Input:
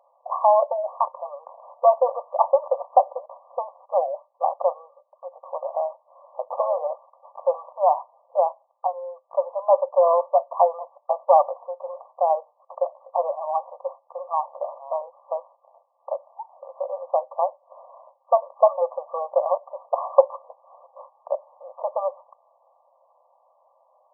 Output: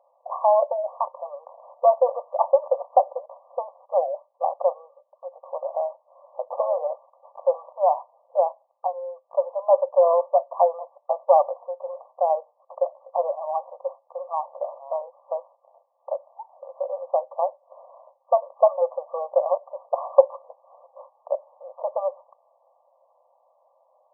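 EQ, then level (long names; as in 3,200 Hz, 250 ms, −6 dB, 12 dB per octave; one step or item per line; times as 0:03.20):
parametric band 430 Hz +13.5 dB 2.9 octaves
−12.0 dB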